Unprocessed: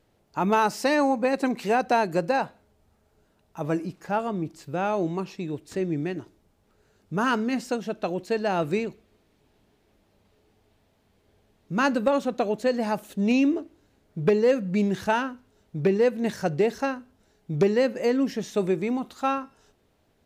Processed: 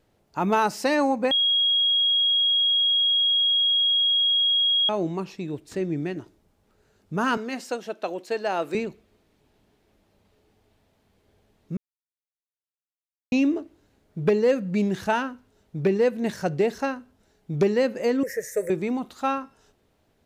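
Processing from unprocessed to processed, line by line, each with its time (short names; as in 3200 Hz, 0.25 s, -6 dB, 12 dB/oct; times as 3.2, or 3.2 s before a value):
1.31–4.89 bleep 3290 Hz -18 dBFS
7.37–8.75 HPF 360 Hz
11.77–13.32 mute
18.23–18.7 EQ curve 100 Hz 0 dB, 190 Hz -17 dB, 290 Hz -23 dB, 510 Hz +13 dB, 770 Hz -15 dB, 1200 Hz -13 dB, 1900 Hz +12 dB, 3200 Hz -27 dB, 5900 Hz +2 dB, 9700 Hz +13 dB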